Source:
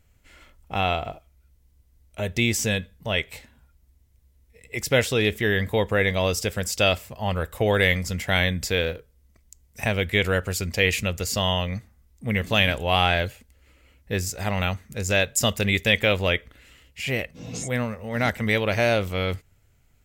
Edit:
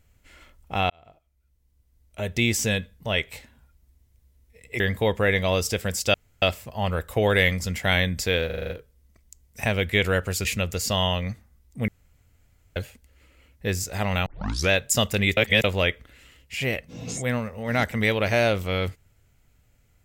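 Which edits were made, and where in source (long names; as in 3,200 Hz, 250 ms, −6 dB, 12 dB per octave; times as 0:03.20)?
0:00.90–0:02.47: fade in
0:04.80–0:05.52: remove
0:06.86: splice in room tone 0.28 s
0:08.90: stutter 0.04 s, 7 plays
0:10.65–0:10.91: remove
0:12.34–0:13.22: fill with room tone
0:14.72: tape start 0.44 s
0:15.83–0:16.10: reverse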